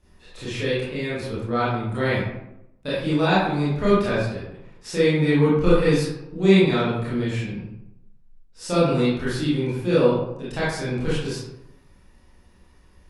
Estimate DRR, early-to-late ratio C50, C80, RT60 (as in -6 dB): -10.5 dB, -1.5 dB, 3.0 dB, 0.85 s